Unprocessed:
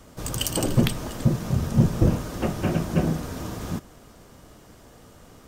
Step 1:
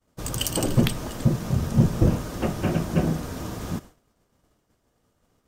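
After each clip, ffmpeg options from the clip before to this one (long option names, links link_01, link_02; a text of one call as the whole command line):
ffmpeg -i in.wav -af "agate=range=-33dB:threshold=-36dB:ratio=3:detection=peak" out.wav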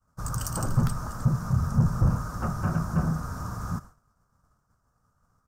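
ffmpeg -i in.wav -af "highshelf=frequency=10000:gain=-4.5,asoftclip=type=tanh:threshold=-14dB,firequalizer=gain_entry='entry(140,0);entry(320,-15);entry(1300,6);entry(2000,-15);entry(3100,-22);entry(5300,-5)':delay=0.05:min_phase=1,volume=1.5dB" out.wav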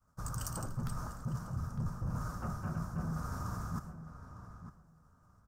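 ffmpeg -i in.wav -filter_complex "[0:a]areverse,acompressor=threshold=-34dB:ratio=5,areverse,asplit=2[link_01][link_02];[link_02]adelay=905,lowpass=frequency=2600:poles=1,volume=-11dB,asplit=2[link_03][link_04];[link_04]adelay=905,lowpass=frequency=2600:poles=1,volume=0.17[link_05];[link_01][link_03][link_05]amix=inputs=3:normalize=0,volume=-1.5dB" out.wav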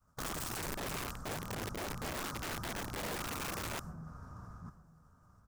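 ffmpeg -i in.wav -af "aeval=exprs='(mod(59.6*val(0)+1,2)-1)/59.6':channel_layout=same,volume=1dB" out.wav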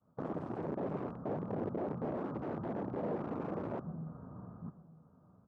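ffmpeg -i in.wav -af "asuperpass=centerf=320:order=4:qfactor=0.6,volume=7dB" out.wav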